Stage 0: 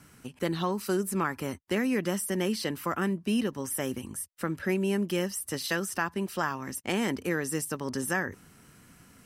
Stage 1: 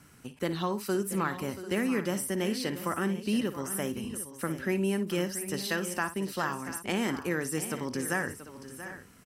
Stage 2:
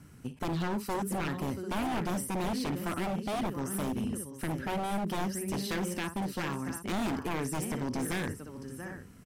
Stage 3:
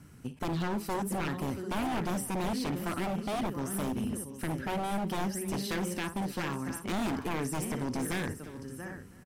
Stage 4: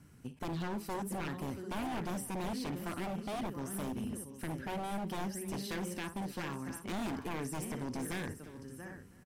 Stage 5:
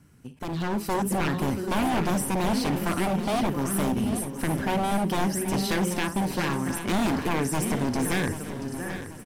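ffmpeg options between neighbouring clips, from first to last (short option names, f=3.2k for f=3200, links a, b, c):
-af "aecho=1:1:57|682|744:0.224|0.224|0.178,volume=-1.5dB"
-af "lowshelf=f=380:g=11.5,aeval=exprs='0.075*(abs(mod(val(0)/0.075+3,4)-2)-1)':c=same,volume=-4dB"
-af "aecho=1:1:319:0.106"
-af "bandreject=f=1.3k:w=27,volume=-5.5dB"
-af "aecho=1:1:785|1570|2355|3140:0.251|0.105|0.0443|0.0186,dynaudnorm=f=250:g=5:m=10.5dB,volume=2dB"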